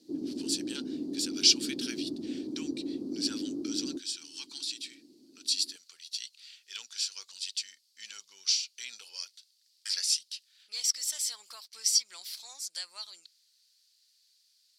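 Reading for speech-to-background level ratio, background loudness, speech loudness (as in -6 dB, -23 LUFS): 5.5 dB, -37.0 LUFS, -31.5 LUFS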